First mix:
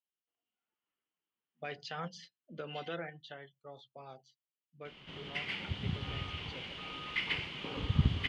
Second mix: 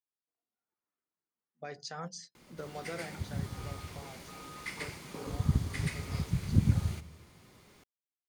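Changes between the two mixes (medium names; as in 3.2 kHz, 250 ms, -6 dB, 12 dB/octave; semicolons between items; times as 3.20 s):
background: entry -2.50 s; master: remove resonant low-pass 3 kHz, resonance Q 7.5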